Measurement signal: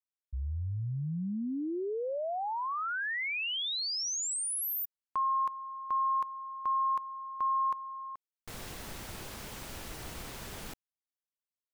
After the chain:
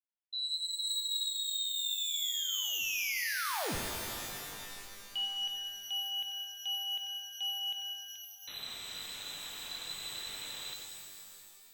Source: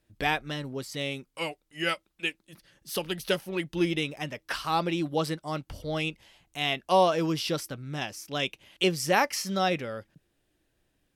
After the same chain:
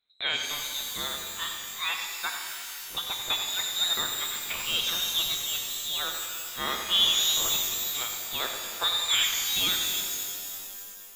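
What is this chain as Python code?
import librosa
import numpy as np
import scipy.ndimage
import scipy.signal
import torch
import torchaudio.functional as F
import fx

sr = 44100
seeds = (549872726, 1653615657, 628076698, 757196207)

p1 = fx.hum_notches(x, sr, base_hz=50, count=3)
p2 = fx.leveller(p1, sr, passes=1)
p3 = p2 + fx.echo_single(p2, sr, ms=92, db=-9.5, dry=0)
p4 = fx.freq_invert(p3, sr, carrier_hz=4000)
p5 = fx.rev_shimmer(p4, sr, seeds[0], rt60_s=2.5, semitones=12, shimmer_db=-2, drr_db=3.5)
y = F.gain(torch.from_numpy(p5), -6.5).numpy()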